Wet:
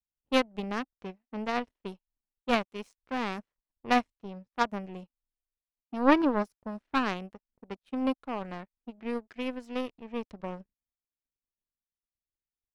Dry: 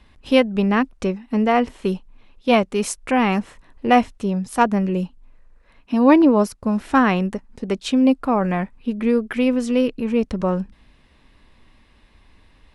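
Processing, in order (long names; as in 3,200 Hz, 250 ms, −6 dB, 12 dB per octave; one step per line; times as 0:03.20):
low-pass that shuts in the quiet parts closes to 620 Hz, open at −15.5 dBFS
power curve on the samples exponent 2
level −4 dB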